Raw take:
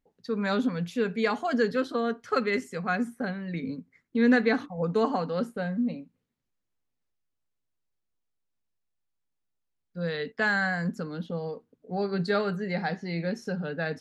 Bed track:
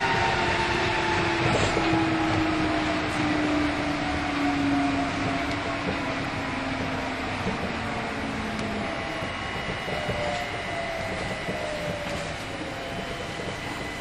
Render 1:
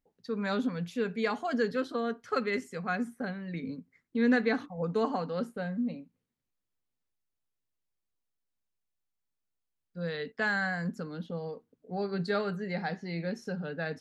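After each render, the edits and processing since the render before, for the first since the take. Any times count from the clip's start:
level −4 dB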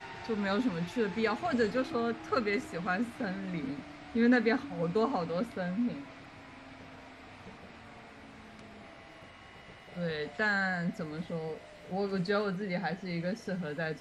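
mix in bed track −21 dB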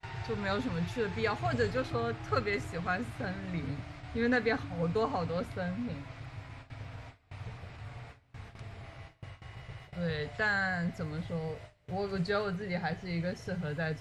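low shelf with overshoot 160 Hz +9.5 dB, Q 3
noise gate with hold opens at −37 dBFS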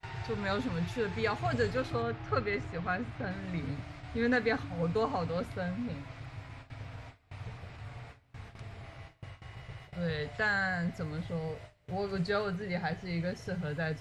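0:02.02–0:03.31: high-frequency loss of the air 120 metres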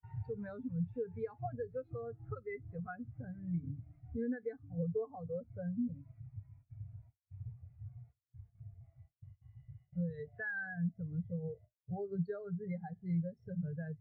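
downward compressor 10 to 1, threshold −36 dBFS, peak gain reduction 12.5 dB
every bin expanded away from the loudest bin 2.5 to 1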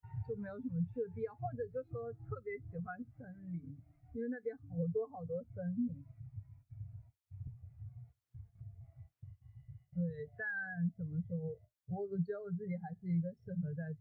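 0:03.02–0:04.45: parametric band 95 Hz −10 dB 2.1 octaves
0:07.47–0:09.41: multiband upward and downward compressor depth 70%

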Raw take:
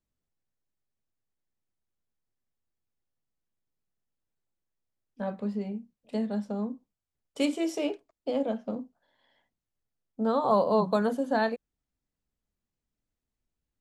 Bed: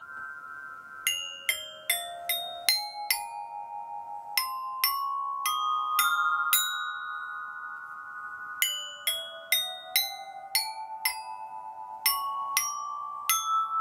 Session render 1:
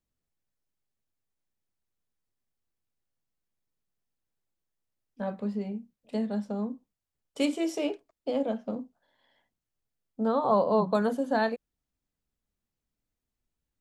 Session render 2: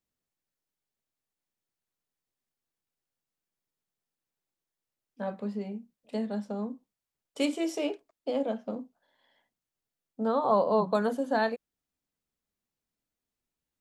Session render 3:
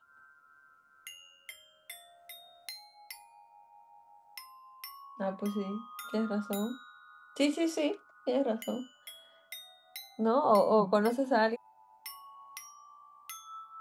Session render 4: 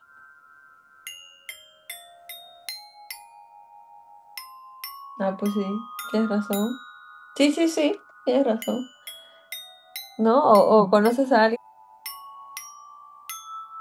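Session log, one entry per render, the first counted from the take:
0:10.28–0:10.95: high-shelf EQ 5,000 Hz −10 dB
low-shelf EQ 110 Hz −12 dB
mix in bed −19.5 dB
level +9 dB

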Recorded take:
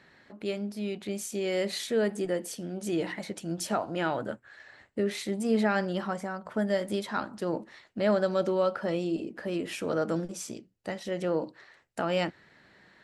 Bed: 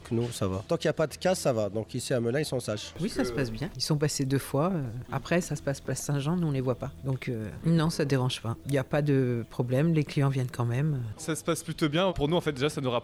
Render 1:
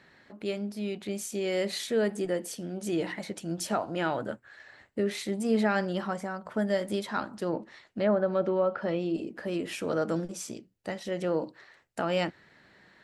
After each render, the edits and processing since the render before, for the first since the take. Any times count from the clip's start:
0:07.46–0:09.15: treble cut that deepens with the level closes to 1,300 Hz, closed at −21 dBFS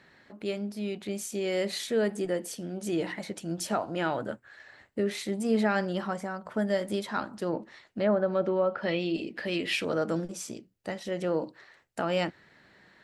0:08.83–0:09.85: flat-topped bell 3,000 Hz +10 dB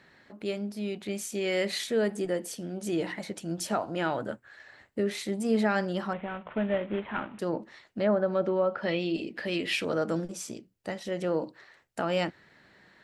0:01.01–0:01.84: dynamic equaliser 2,100 Hz, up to +5 dB, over −48 dBFS, Q 0.97
0:06.13–0:07.39: variable-slope delta modulation 16 kbit/s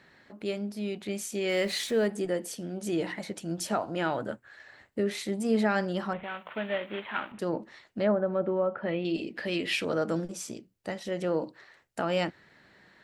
0:01.49–0:02.07: converter with a step at zero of −43.5 dBFS
0:06.23–0:07.32: spectral tilt +3.5 dB per octave
0:08.12–0:09.05: high-frequency loss of the air 470 metres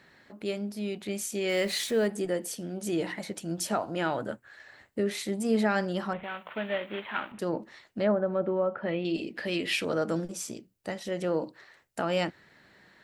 high-shelf EQ 8,800 Hz +6 dB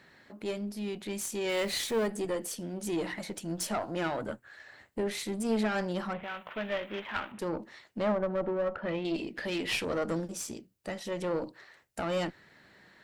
one-sided soft clipper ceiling −29 dBFS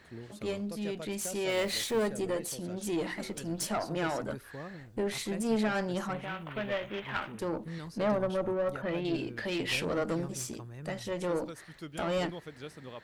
mix in bed −17 dB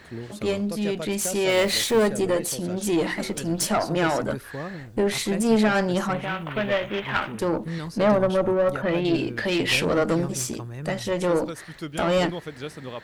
level +9.5 dB

